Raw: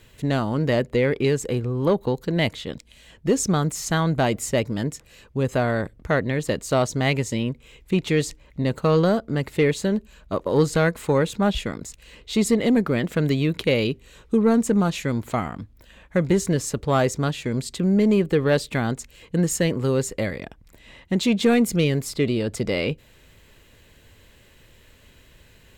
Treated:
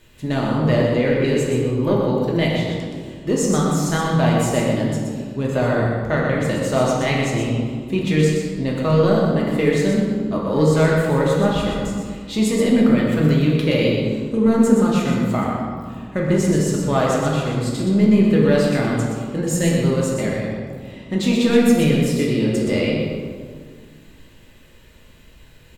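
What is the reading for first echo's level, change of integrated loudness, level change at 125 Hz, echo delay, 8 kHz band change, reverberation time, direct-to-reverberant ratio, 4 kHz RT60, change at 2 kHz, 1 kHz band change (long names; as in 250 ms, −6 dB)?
−5.5 dB, +4.0 dB, +4.5 dB, 123 ms, +1.0 dB, 1.9 s, −4.0 dB, 1.1 s, +2.5 dB, +3.5 dB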